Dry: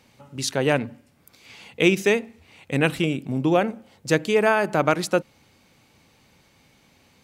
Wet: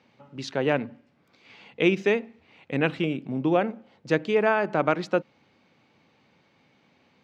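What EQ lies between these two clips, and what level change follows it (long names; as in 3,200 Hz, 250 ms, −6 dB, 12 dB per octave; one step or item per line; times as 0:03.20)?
high-pass filter 150 Hz 12 dB per octave
high-frequency loss of the air 200 metres
−2.0 dB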